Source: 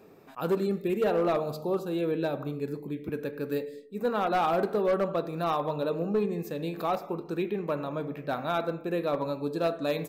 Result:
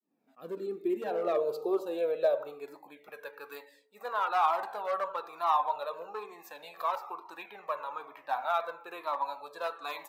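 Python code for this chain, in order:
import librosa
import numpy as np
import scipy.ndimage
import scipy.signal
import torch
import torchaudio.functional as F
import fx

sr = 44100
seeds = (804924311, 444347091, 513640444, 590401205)

y = fx.fade_in_head(x, sr, length_s=1.83)
y = fx.filter_sweep_highpass(y, sr, from_hz=230.0, to_hz=930.0, start_s=0.1, end_s=3.36, q=3.2)
y = fx.comb_cascade(y, sr, direction='falling', hz=1.1)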